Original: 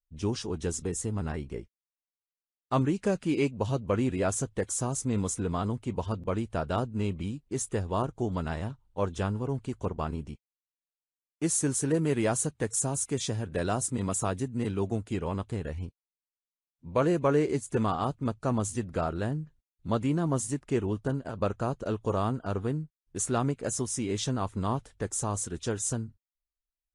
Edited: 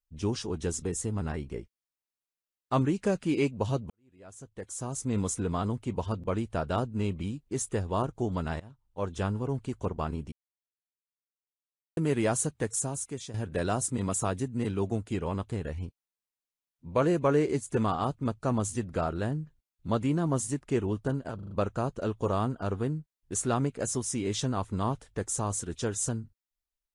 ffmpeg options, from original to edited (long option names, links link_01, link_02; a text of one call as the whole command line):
ffmpeg -i in.wav -filter_complex "[0:a]asplit=10[link_01][link_02][link_03][link_04][link_05][link_06][link_07][link_08][link_09][link_10];[link_01]atrim=end=3.9,asetpts=PTS-STARTPTS,afade=type=out:start_time=3.896:duration=0.004:curve=hsin[link_11];[link_02]atrim=start=3.9:end=8.6,asetpts=PTS-STARTPTS,afade=type=in:duration=1.28:curve=qua,afade=type=out:start_time=4.696:duration=0.004:curve=hsin:silence=0.0944061[link_12];[link_03]atrim=start=8.6:end=10.32,asetpts=PTS-STARTPTS,afade=type=in:duration=0.66:silence=0.0944061,afade=type=out:start_time=1.716:duration=0.004:curve=hsin[link_13];[link_04]atrim=start=10.32:end=11.97,asetpts=PTS-STARTPTS,volume=0[link_14];[link_05]atrim=start=11.97:end=13.34,asetpts=PTS-STARTPTS,afade=type=in:duration=0.004:curve=hsin,afade=type=out:start_time=0.62:duration=0.75:silence=0.251189[link_15];[link_06]atrim=start=13.34:end=21.392,asetpts=PTS-STARTPTS,afade=type=in:duration=0.004:curve=hsin:silence=0.251189[link_16];[link_07]atrim=start=21.348:end=21.392[link_17];[link_08]atrim=start=21.348:end=21.392[link_18];[link_09]atrim=start=21.348:end=21.392[link_19];[link_10]atrim=start=21.348[link_20];[link_11][link_12][link_13][link_14][link_15][link_16]concat=n=6:v=0:a=1[link_21];[link_21][link_17]acrossfade=duration=0.004:curve1=hsin:curve2=hsin[link_22];[link_22][link_18]acrossfade=duration=0.004:curve1=hsin:curve2=hsin[link_23];[link_23][link_19]acrossfade=duration=0.004:curve1=hsin:curve2=hsin[link_24];[link_24][link_20]acrossfade=duration=0.004:curve1=hsin:curve2=hsin" out.wav